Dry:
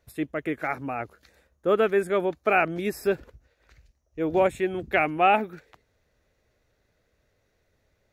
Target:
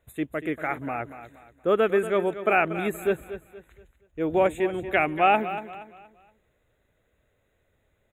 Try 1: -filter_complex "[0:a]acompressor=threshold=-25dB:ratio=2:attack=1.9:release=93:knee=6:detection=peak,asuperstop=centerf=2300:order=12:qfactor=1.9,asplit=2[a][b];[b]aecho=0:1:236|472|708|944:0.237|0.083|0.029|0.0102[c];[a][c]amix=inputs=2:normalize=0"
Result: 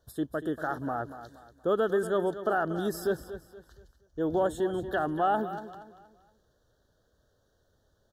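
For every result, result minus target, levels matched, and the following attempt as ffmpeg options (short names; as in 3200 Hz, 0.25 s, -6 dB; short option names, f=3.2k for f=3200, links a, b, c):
compressor: peak gain reduction +6.5 dB; 2000 Hz band -4.0 dB
-filter_complex "[0:a]asuperstop=centerf=2300:order=12:qfactor=1.9,asplit=2[a][b];[b]aecho=0:1:236|472|708|944:0.237|0.083|0.029|0.0102[c];[a][c]amix=inputs=2:normalize=0"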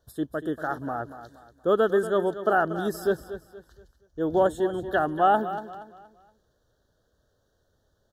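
2000 Hz band -3.5 dB
-filter_complex "[0:a]asuperstop=centerf=5100:order=12:qfactor=1.9,asplit=2[a][b];[b]aecho=0:1:236|472|708|944:0.237|0.083|0.029|0.0102[c];[a][c]amix=inputs=2:normalize=0"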